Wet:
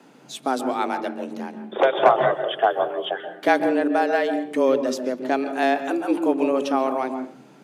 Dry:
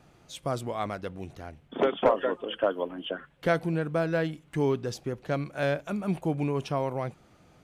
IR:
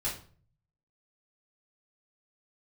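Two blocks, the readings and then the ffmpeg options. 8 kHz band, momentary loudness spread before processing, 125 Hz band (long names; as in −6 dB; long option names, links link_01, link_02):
can't be measured, 11 LU, −13.0 dB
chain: -filter_complex "[0:a]afreqshift=130,asplit=2[link_01][link_02];[link_02]aemphasis=mode=reproduction:type=riaa[link_03];[1:a]atrim=start_sample=2205,adelay=128[link_04];[link_03][link_04]afir=irnorm=-1:irlink=0,volume=-12.5dB[link_05];[link_01][link_05]amix=inputs=2:normalize=0,volume=6.5dB"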